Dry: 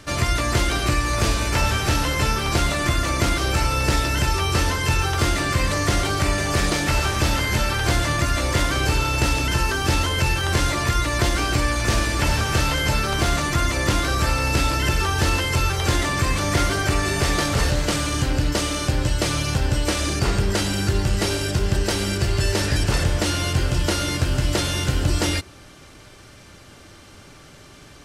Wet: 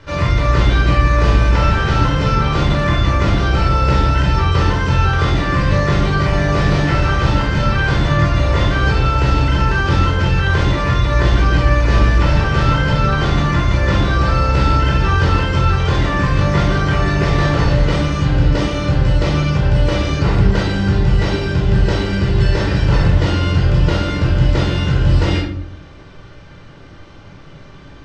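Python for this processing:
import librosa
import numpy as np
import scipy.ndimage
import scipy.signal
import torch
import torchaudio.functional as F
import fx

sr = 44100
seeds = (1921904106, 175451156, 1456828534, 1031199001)

y = fx.air_absorb(x, sr, metres=190.0)
y = fx.room_shoebox(y, sr, seeds[0], volume_m3=930.0, walls='furnished', distance_m=4.8)
y = y * 10.0 ** (-1.0 / 20.0)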